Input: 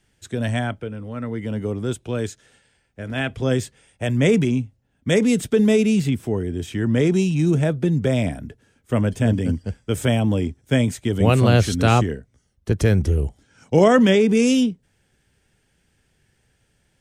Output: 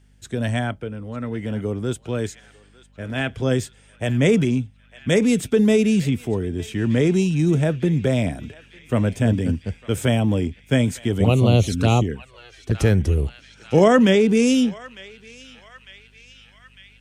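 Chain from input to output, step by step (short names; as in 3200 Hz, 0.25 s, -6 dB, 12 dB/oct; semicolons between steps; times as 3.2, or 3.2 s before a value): hum 50 Hz, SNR 34 dB; narrowing echo 0.902 s, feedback 73%, band-pass 2700 Hz, level -15.5 dB; 11.24–12.75 envelope flanger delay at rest 3 ms, full sweep at -12.5 dBFS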